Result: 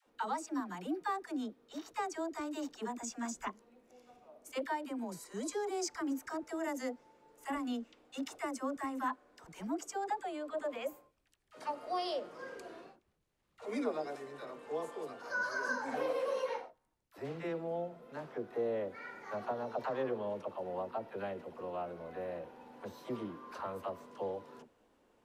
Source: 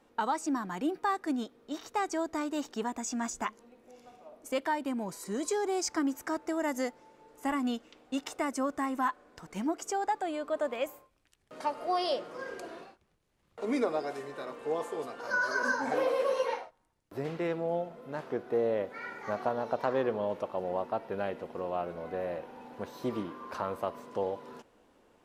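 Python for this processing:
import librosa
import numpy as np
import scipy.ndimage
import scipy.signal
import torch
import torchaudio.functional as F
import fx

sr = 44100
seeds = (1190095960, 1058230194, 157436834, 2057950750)

y = fx.dispersion(x, sr, late='lows', ms=67.0, hz=560.0)
y = y * librosa.db_to_amplitude(-6.0)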